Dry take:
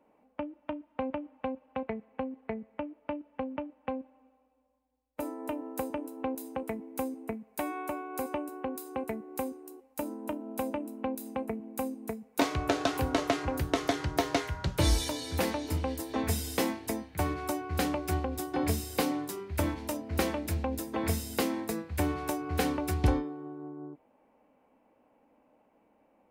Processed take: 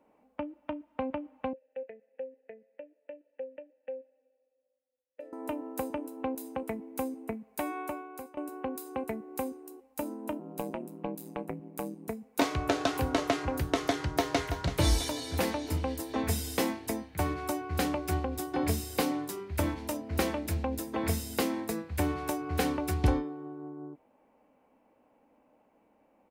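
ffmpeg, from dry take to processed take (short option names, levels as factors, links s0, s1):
-filter_complex "[0:a]asettb=1/sr,asplit=3[s0][s1][s2];[s0]atrim=end=1.534[s3];[s1]atrim=start=1.53:end=5.33,asetpts=PTS-STARTPTS,afade=t=in:d=0.004:c=qsin,afade=t=out:st=3.796:d=0.004:c=qsin,asplit=3[s4][s5][s6];[s4]bandpass=f=530:t=q:w=8,volume=1[s7];[s5]bandpass=f=1840:t=q:w=8,volume=0.501[s8];[s6]bandpass=f=2480:t=q:w=8,volume=0.355[s9];[s7][s8][s9]amix=inputs=3:normalize=0[s10];[s2]atrim=start=5.326[s11];[s3][s10]acrossfade=d=0.004:c1=hsin:c2=qsin[s12];[s12][s11]acrossfade=d=0.004:c1=qsin:c2=hsin,asettb=1/sr,asplit=3[s13][s14][s15];[s13]atrim=end=10.394[s16];[s14]atrim=start=10.39:end=12.08,asetpts=PTS-STARTPTS,afade=t=in:d=0.004:c=qsin,afade=t=out:st=1.686:d=0.004:c=qsin,aeval=exprs='val(0)*sin(2*PI*59*n/s)':c=same[s17];[s15]atrim=start=12.076[s18];[s16][s17]acrossfade=d=0.004:c1=hsin:c2=qsin[s19];[s19][s18]acrossfade=d=0.004:c1=qsin:c2=hsin,asplit=2[s20][s21];[s21]afade=t=in:st=14.04:d=0.01,afade=t=out:st=14.46:d=0.01,aecho=0:1:330|660|990|1320|1650:0.316228|0.158114|0.0790569|0.0395285|0.0197642[s22];[s20][s22]amix=inputs=2:normalize=0,asplit=2[s23][s24];[s23]atrim=end=8.37,asetpts=PTS-STARTPTS,afade=t=out:st=7.82:d=0.55:silence=0.1[s25];[s24]atrim=start=8.37,asetpts=PTS-STARTPTS,afade=t=in:d=0.004:c=hsin:silence=0.1[s26];[s25][s26]concat=n=2:v=0:a=1"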